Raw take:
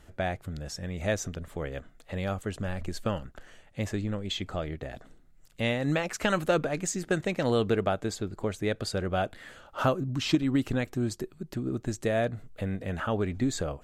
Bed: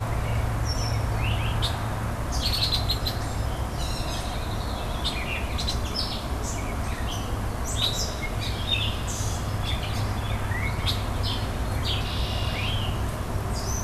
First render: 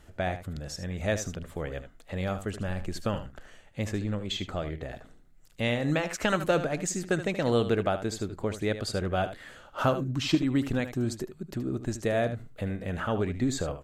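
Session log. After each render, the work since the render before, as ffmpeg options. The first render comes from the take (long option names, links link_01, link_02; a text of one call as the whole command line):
ffmpeg -i in.wav -af "aecho=1:1:76:0.266" out.wav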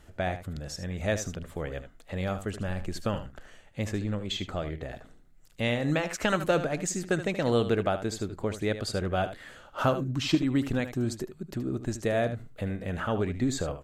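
ffmpeg -i in.wav -af anull out.wav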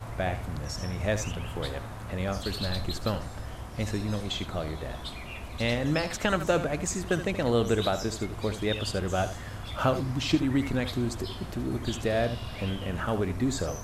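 ffmpeg -i in.wav -i bed.wav -filter_complex "[1:a]volume=-11dB[link_01];[0:a][link_01]amix=inputs=2:normalize=0" out.wav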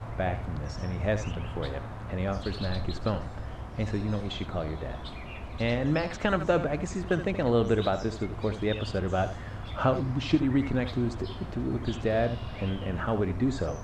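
ffmpeg -i in.wav -filter_complex "[0:a]acrossover=split=9100[link_01][link_02];[link_02]acompressor=threshold=-60dB:ratio=4:attack=1:release=60[link_03];[link_01][link_03]amix=inputs=2:normalize=0,aemphasis=mode=reproduction:type=75fm" out.wav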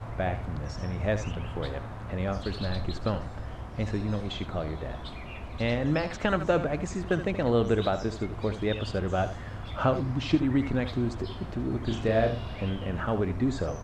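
ffmpeg -i in.wav -filter_complex "[0:a]asplit=3[link_01][link_02][link_03];[link_01]afade=type=out:start_time=11.89:duration=0.02[link_04];[link_02]asplit=2[link_05][link_06];[link_06]adelay=36,volume=-4.5dB[link_07];[link_05][link_07]amix=inputs=2:normalize=0,afade=type=in:start_time=11.89:duration=0.02,afade=type=out:start_time=12.53:duration=0.02[link_08];[link_03]afade=type=in:start_time=12.53:duration=0.02[link_09];[link_04][link_08][link_09]amix=inputs=3:normalize=0" out.wav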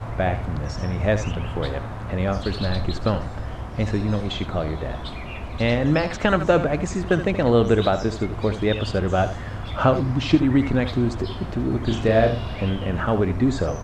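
ffmpeg -i in.wav -af "volume=7dB" out.wav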